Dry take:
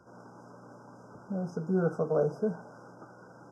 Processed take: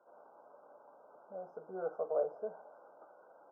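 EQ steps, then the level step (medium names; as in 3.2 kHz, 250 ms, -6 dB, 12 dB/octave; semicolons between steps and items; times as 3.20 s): ladder band-pass 730 Hz, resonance 45%; +3.5 dB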